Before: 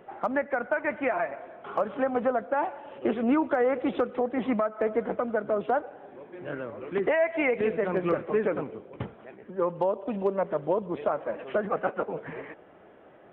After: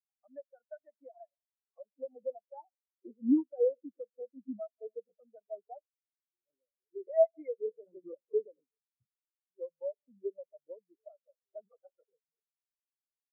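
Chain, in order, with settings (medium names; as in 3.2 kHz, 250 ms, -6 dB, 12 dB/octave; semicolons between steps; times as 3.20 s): spectral contrast expander 4:1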